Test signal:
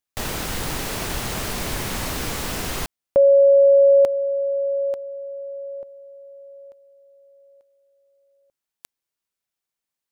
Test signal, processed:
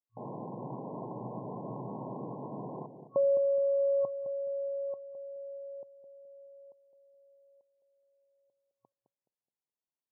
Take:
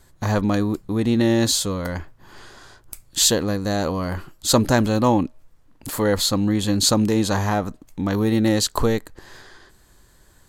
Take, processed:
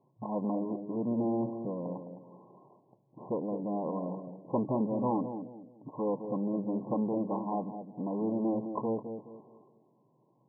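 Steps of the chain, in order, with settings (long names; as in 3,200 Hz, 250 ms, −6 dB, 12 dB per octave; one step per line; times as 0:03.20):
high-frequency loss of the air 66 metres
asymmetric clip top −25.5 dBFS
brick-wall band-pass 110–1,100 Hz
on a send: bucket-brigade delay 211 ms, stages 1,024, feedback 34%, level −8 dB
on the sum: level −8 dB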